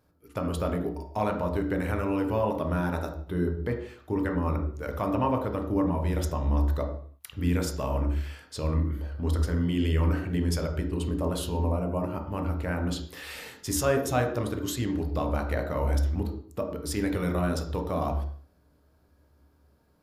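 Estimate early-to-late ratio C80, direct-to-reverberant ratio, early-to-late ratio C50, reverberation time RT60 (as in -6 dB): 10.0 dB, 3.0 dB, 7.5 dB, 0.50 s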